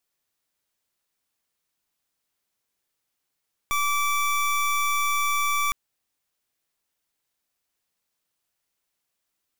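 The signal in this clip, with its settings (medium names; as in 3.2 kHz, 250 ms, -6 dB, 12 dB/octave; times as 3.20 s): pulse 1.16 kHz, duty 26% -23.5 dBFS 2.01 s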